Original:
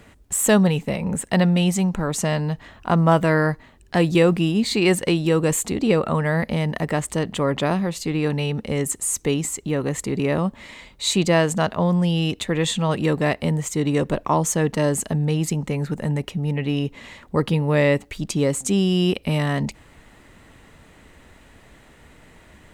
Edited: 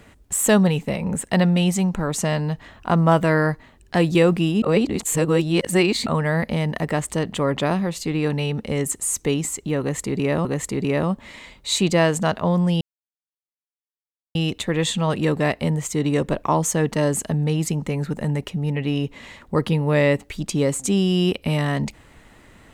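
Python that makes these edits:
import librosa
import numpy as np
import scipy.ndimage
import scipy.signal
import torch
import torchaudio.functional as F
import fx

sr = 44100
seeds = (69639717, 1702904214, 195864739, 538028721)

y = fx.edit(x, sr, fx.reverse_span(start_s=4.62, length_s=1.44),
    fx.repeat(start_s=9.8, length_s=0.65, count=2),
    fx.insert_silence(at_s=12.16, length_s=1.54), tone=tone)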